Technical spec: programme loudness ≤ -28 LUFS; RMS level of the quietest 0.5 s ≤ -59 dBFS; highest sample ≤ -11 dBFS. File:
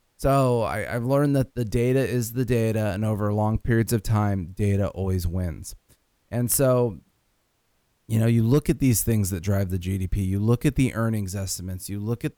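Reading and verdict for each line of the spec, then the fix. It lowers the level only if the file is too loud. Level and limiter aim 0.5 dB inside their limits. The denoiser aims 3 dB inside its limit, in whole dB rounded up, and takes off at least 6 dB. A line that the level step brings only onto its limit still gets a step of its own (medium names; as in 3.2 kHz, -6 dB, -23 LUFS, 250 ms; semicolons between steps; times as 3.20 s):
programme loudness -24.0 LUFS: fail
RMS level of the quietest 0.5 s -69 dBFS: pass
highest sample -8.0 dBFS: fail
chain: trim -4.5 dB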